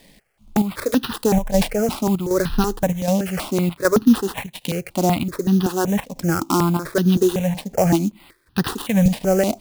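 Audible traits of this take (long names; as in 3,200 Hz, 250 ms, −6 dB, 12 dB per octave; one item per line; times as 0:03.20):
a quantiser's noise floor 12 bits, dither triangular
chopped level 1.3 Hz, depth 60%, duty 80%
aliases and images of a low sample rate 6,600 Hz, jitter 20%
notches that jump at a steady rate 5.3 Hz 360–2,200 Hz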